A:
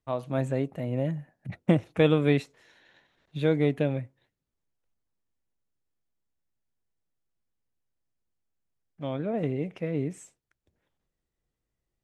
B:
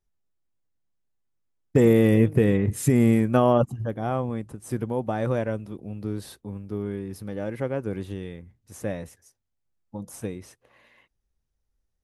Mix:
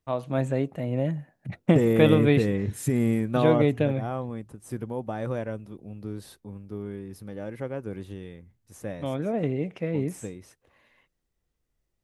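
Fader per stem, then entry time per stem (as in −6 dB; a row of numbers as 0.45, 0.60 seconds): +2.0, −5.0 decibels; 0.00, 0.00 seconds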